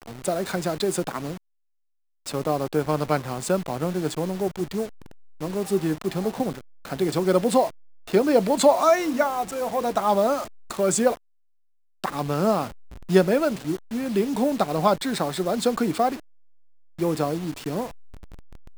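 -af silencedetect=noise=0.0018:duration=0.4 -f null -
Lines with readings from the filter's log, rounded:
silence_start: 1.37
silence_end: 2.26 | silence_duration: 0.88
silence_start: 11.17
silence_end: 12.04 | silence_duration: 0.87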